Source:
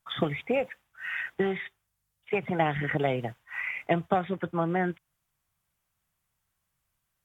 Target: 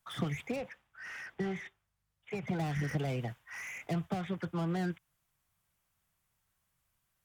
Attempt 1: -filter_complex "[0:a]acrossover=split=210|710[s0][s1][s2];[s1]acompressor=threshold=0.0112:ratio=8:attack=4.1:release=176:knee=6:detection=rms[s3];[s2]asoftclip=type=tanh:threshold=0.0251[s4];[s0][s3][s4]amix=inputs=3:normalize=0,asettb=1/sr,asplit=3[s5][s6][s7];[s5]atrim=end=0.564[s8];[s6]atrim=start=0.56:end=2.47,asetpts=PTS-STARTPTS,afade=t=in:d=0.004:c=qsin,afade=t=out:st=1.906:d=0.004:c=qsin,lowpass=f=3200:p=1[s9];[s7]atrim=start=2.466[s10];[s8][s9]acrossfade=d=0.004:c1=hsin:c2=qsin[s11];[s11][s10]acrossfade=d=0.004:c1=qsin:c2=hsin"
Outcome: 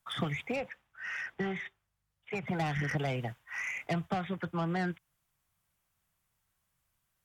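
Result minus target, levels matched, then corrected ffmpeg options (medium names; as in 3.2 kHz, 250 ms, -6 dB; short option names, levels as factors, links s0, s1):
saturation: distortion -6 dB
-filter_complex "[0:a]acrossover=split=210|710[s0][s1][s2];[s1]acompressor=threshold=0.0112:ratio=8:attack=4.1:release=176:knee=6:detection=rms[s3];[s2]asoftclip=type=tanh:threshold=0.00794[s4];[s0][s3][s4]amix=inputs=3:normalize=0,asettb=1/sr,asplit=3[s5][s6][s7];[s5]atrim=end=0.564[s8];[s6]atrim=start=0.56:end=2.47,asetpts=PTS-STARTPTS,afade=t=in:d=0.004:c=qsin,afade=t=out:st=1.906:d=0.004:c=qsin,lowpass=f=3200:p=1[s9];[s7]atrim=start=2.466[s10];[s8][s9]acrossfade=d=0.004:c1=hsin:c2=qsin[s11];[s11][s10]acrossfade=d=0.004:c1=qsin:c2=hsin"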